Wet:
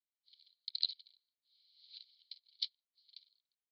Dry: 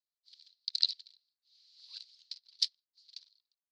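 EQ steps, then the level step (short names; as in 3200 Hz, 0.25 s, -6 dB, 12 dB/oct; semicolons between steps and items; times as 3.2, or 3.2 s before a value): vowel filter i; synth low-pass 4200 Hz, resonance Q 4.3; +1.0 dB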